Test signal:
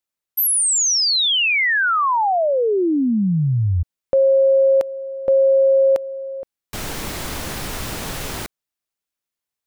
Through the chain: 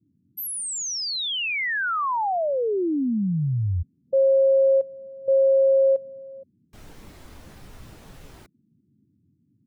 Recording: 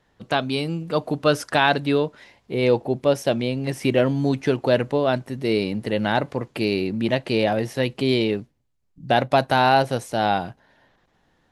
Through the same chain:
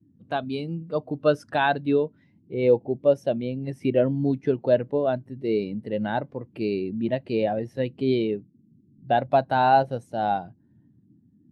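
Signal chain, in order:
noise in a band 87–300 Hz −44 dBFS
every bin expanded away from the loudest bin 1.5 to 1
level −4 dB

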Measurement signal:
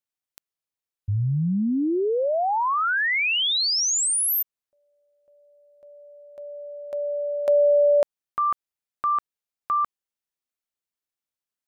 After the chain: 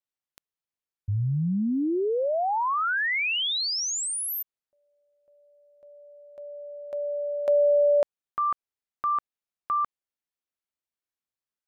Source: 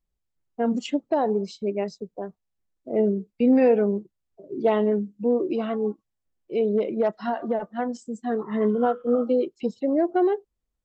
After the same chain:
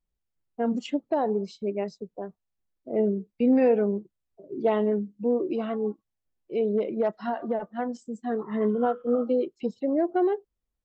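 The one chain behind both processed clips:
high-shelf EQ 5,200 Hz −6 dB
level −2.5 dB

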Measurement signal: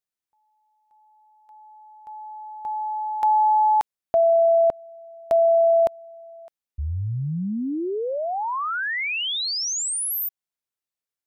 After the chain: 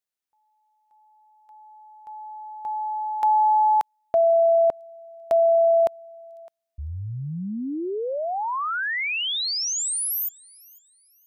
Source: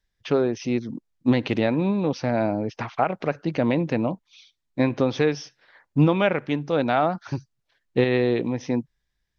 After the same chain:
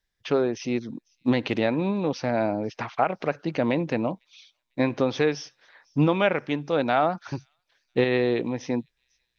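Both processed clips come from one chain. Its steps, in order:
low-shelf EQ 230 Hz −6 dB
delay with a high-pass on its return 499 ms, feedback 33%, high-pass 4,300 Hz, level −24 dB

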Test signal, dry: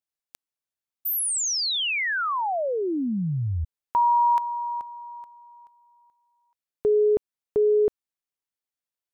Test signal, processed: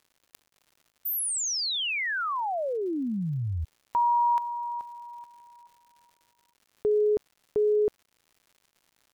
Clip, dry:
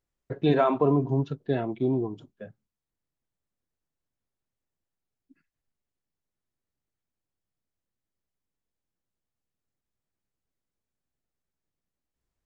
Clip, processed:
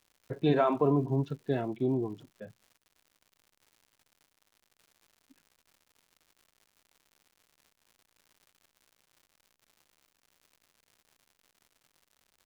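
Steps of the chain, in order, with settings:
surface crackle 180 per second −46 dBFS
level −3.5 dB

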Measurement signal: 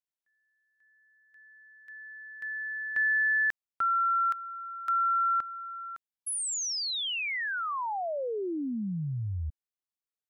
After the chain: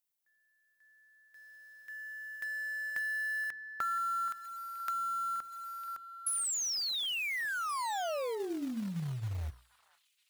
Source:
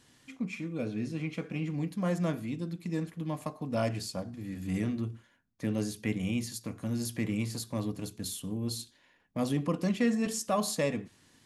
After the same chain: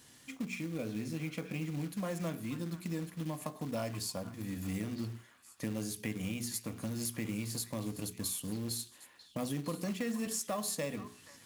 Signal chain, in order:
high-pass filter 41 Hz 12 dB per octave
high-shelf EQ 8,700 Hz +12 dB
mains-hum notches 60/120/180/240/300/360/420 Hz
downward compressor 3 to 1, threshold −37 dBFS
floating-point word with a short mantissa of 2 bits
echo through a band-pass that steps 476 ms, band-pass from 1,300 Hz, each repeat 1.4 octaves, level −10 dB
level +1.5 dB

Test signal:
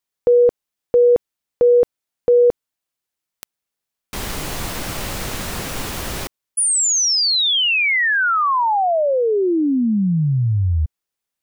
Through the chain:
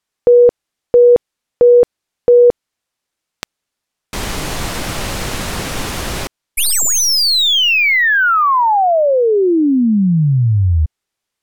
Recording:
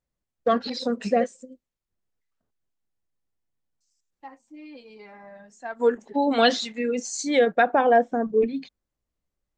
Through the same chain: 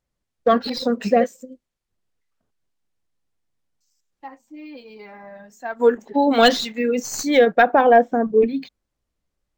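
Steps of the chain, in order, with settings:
stylus tracing distortion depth 0.022 ms
linearly interpolated sample-rate reduction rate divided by 2×
level +5 dB

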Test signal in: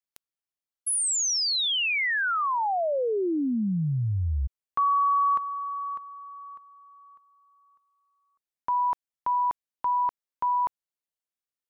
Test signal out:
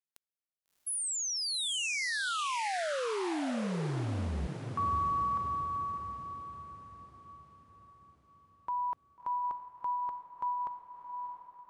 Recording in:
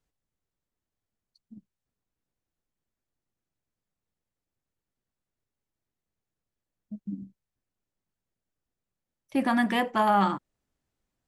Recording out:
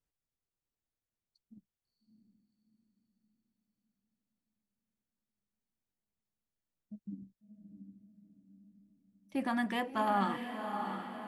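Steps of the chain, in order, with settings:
feedback delay with all-pass diffusion 671 ms, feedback 50%, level −6.5 dB
level −8.5 dB

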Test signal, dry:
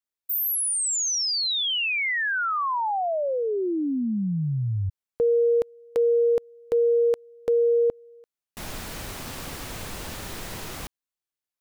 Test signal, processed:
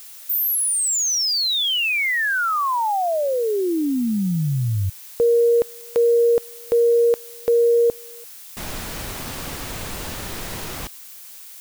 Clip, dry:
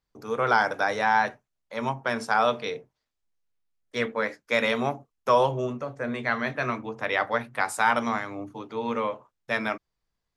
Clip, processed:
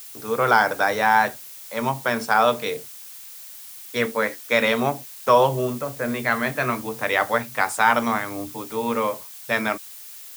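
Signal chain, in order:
background noise blue −45 dBFS
level +4.5 dB

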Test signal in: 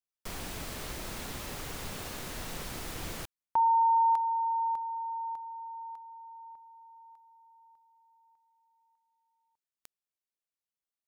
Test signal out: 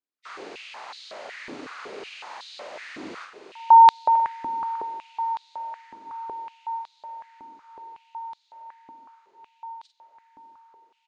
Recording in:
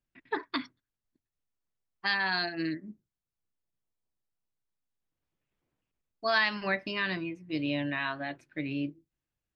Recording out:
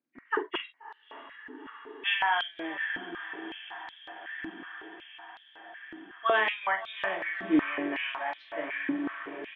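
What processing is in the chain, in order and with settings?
hearing-aid frequency compression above 1,800 Hz 1.5 to 1
high-frequency loss of the air 170 metres
double-tracking delay 46 ms −7.5 dB
feedback delay with all-pass diffusion 650 ms, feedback 77%, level −11 dB
high-pass on a step sequencer 5.4 Hz 280–3,900 Hz

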